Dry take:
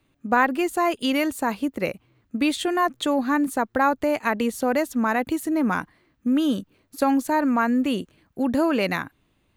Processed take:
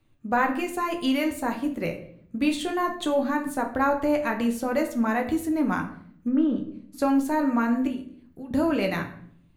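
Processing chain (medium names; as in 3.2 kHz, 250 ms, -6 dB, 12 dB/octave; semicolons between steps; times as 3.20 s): 6.27–7.03 s: low-pass that closes with the level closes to 1.5 kHz, closed at -18 dBFS; bass shelf 120 Hz +9.5 dB; 7.87–8.51 s: compression 2.5:1, threshold -41 dBFS, peak gain reduction 15 dB; flange 0.21 Hz, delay 8.7 ms, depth 5.9 ms, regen -50%; simulated room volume 100 m³, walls mixed, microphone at 0.46 m; trim -1 dB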